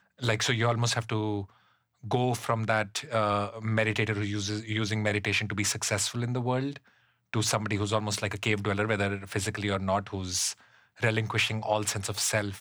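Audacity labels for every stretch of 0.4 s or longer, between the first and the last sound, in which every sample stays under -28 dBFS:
1.410000	2.110000	silence
6.760000	7.340000	silence
10.510000	11.030000	silence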